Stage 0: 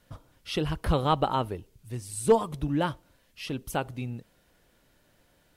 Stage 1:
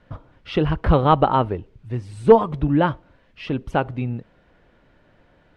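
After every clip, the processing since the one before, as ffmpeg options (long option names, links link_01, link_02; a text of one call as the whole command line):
ffmpeg -i in.wav -af "lowpass=2200,volume=9dB" out.wav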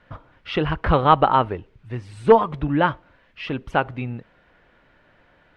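ffmpeg -i in.wav -af "equalizer=frequency=1800:width_type=o:width=2.7:gain=8.5,volume=-4dB" out.wav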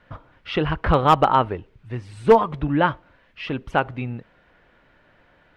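ffmpeg -i in.wav -af "asoftclip=type=hard:threshold=-5.5dB" out.wav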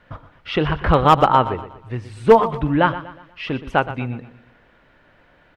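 ffmpeg -i in.wav -af "aecho=1:1:121|242|363|484:0.2|0.0818|0.0335|0.0138,volume=2.5dB" out.wav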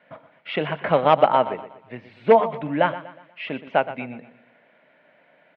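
ffmpeg -i in.wav -af "highpass=frequency=170:width=0.5412,highpass=frequency=170:width=1.3066,equalizer=frequency=340:width_type=q:width=4:gain=-5,equalizer=frequency=630:width_type=q:width=4:gain=9,equalizer=frequency=1200:width_type=q:width=4:gain=-5,equalizer=frequency=2200:width_type=q:width=4:gain=7,lowpass=frequency=3700:width=0.5412,lowpass=frequency=3700:width=1.3066,volume=-4.5dB" out.wav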